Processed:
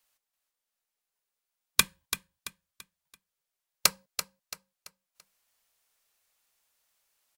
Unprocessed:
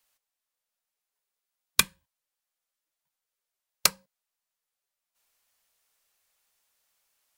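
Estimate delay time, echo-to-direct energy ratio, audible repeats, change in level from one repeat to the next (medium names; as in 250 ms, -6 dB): 336 ms, -9.5 dB, 3, -8.5 dB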